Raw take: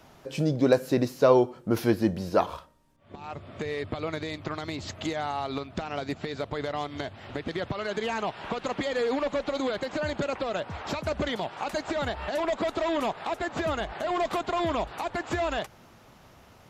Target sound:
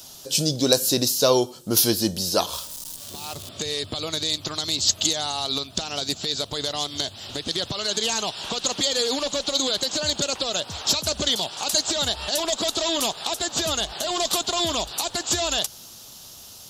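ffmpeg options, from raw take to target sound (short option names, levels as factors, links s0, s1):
-filter_complex "[0:a]asettb=1/sr,asplit=3[s0][s1][s2];[s0]atrim=end=2.534[s3];[s1]atrim=start=2.53:end=3.49,asetpts=PTS-STARTPTS,afade=t=in:d=0.004:c=qsin,afade=t=out:st=0.956:d=0.004:c=qsin,aeval=exprs='val(0)+0.5*0.00501*sgn(val(0))':c=same[s4];[s2]atrim=start=3.486[s5];[s3][s4]acrossfade=d=0.004:c1=hsin:c2=qsin[s6];[s6][s5]acrossfade=d=0.004:c1=qsin:c2=hsin,aexciter=amount=12.7:drive=4:freq=3200"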